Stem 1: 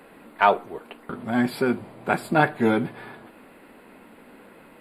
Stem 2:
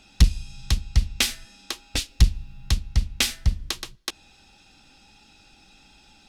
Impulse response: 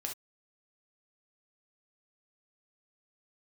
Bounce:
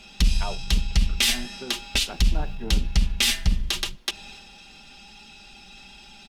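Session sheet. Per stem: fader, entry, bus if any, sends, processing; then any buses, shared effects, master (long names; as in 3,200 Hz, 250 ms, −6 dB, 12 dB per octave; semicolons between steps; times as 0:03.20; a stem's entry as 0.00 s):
−15.5 dB, 0.00 s, no send, treble cut that deepens with the level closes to 990 Hz
+3.0 dB, 0.00 s, no send, comb filter 5 ms, depth 68%; transient designer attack −1 dB, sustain +5 dB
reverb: not used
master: parametric band 2,900 Hz +6 dB 0.72 octaves; brickwall limiter −10.5 dBFS, peak gain reduction 10 dB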